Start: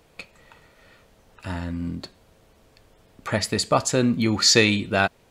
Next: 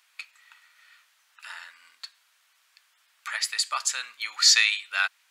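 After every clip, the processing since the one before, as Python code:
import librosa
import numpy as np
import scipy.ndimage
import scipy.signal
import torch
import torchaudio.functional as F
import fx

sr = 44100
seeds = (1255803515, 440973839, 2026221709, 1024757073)

y = scipy.signal.sosfilt(scipy.signal.butter(4, 1300.0, 'highpass', fs=sr, output='sos'), x)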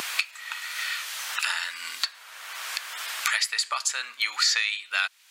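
y = fx.low_shelf(x, sr, hz=440.0, db=5.5)
y = fx.wow_flutter(y, sr, seeds[0], rate_hz=2.1, depth_cents=23.0)
y = fx.band_squash(y, sr, depth_pct=100)
y = y * 10.0 ** (2.5 / 20.0)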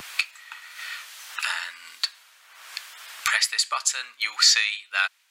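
y = fx.band_widen(x, sr, depth_pct=100)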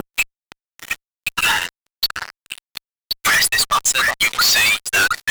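y = fx.bin_expand(x, sr, power=2.0)
y = fx.echo_stepped(y, sr, ms=358, hz=530.0, octaves=1.4, feedback_pct=70, wet_db=-7.5)
y = fx.fuzz(y, sr, gain_db=44.0, gate_db=-47.0)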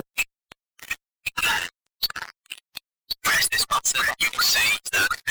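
y = fx.spec_quant(x, sr, step_db=15)
y = y * 10.0 ** (-5.0 / 20.0)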